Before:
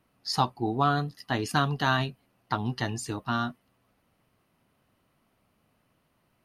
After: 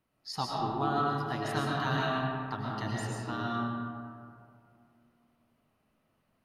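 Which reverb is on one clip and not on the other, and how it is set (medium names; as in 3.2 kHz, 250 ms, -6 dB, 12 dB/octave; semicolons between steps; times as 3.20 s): algorithmic reverb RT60 2.5 s, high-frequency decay 0.4×, pre-delay 75 ms, DRR -4 dB; trim -9.5 dB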